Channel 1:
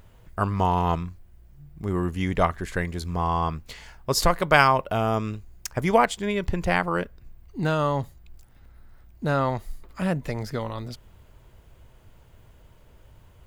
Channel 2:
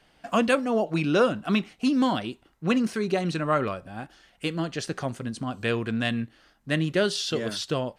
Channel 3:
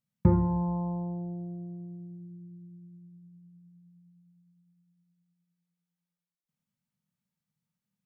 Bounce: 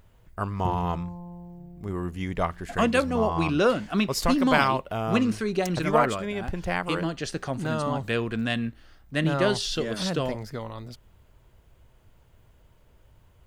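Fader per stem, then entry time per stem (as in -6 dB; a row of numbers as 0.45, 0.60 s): -5.0, -0.5, -9.0 dB; 0.00, 2.45, 0.40 s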